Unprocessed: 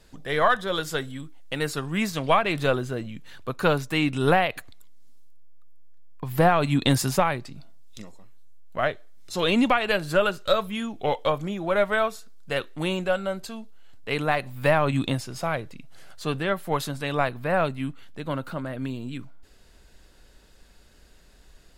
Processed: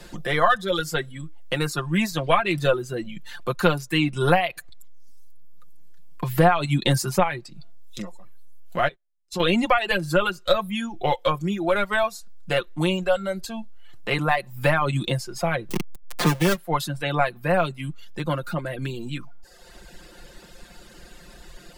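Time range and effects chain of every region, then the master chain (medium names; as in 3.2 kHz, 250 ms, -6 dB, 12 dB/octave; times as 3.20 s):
8.88–9.40 s: gate -37 dBFS, range -29 dB + compression 2.5:1, threshold -38 dBFS
15.69–16.57 s: square wave that keeps the level + three bands compressed up and down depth 70%
whole clip: reverb removal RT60 0.98 s; comb 5.7 ms, depth 70%; three bands compressed up and down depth 40%; trim +1 dB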